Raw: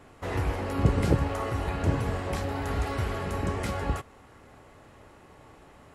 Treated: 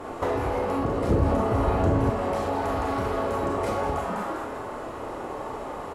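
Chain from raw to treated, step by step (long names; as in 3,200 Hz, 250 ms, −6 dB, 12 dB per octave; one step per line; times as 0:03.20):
flat-topped bell 610 Hz +9 dB 2.4 octaves
on a send: echo with shifted repeats 200 ms, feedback 32%, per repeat +130 Hz, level −9 dB
on the sum: four-comb reverb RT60 0.37 s, combs from 26 ms, DRR 0 dB
in parallel at −7.5 dB: sine wavefolder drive 7 dB, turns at −2.5 dBFS
on the sum: downward compressor 8 to 1, threshold −24 dBFS, peak gain reduction 17 dB
0:01.09–0:02.10: low-shelf EQ 240 Hz +10.5 dB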